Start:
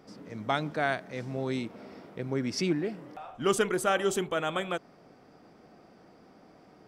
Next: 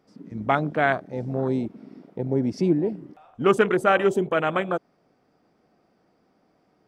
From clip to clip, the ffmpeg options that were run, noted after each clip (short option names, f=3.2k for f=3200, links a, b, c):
-af "afwtdn=0.02,volume=7.5dB"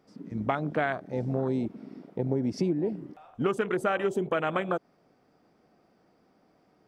-af "acompressor=threshold=-23dB:ratio=12"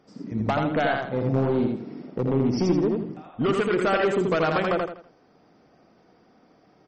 -af "asoftclip=type=hard:threshold=-23.5dB,aecho=1:1:82|164|246|328:0.708|0.234|0.0771|0.0254,volume=5.5dB" -ar 44100 -c:a libmp3lame -b:a 32k